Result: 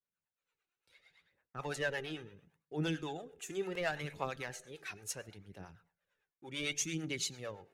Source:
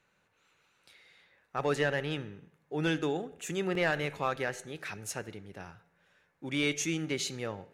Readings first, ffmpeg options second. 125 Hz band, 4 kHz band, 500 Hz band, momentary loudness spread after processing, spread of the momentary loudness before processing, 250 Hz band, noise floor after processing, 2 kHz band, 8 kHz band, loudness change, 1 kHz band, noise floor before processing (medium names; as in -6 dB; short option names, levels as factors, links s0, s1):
-6.5 dB, -4.5 dB, -7.5 dB, 16 LU, 16 LU, -8.0 dB, under -85 dBFS, -6.5 dB, -1.5 dB, -6.5 dB, -7.5 dB, -73 dBFS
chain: -filter_complex "[0:a]agate=range=0.0224:threshold=0.001:ratio=3:detection=peak,aphaser=in_gain=1:out_gain=1:delay=2.9:decay=0.49:speed=0.71:type=triangular,acrossover=split=470[s0][s1];[s0]aeval=exprs='val(0)*(1-0.7/2+0.7/2*cos(2*PI*8.9*n/s))':c=same[s2];[s1]aeval=exprs='val(0)*(1-0.7/2-0.7/2*cos(2*PI*8.9*n/s))':c=same[s3];[s2][s3]amix=inputs=2:normalize=0,adynamicequalizer=threshold=0.00562:dfrequency=2900:dqfactor=0.7:tfrequency=2900:tqfactor=0.7:attack=5:release=100:ratio=0.375:range=2.5:mode=boostabove:tftype=highshelf,volume=0.531"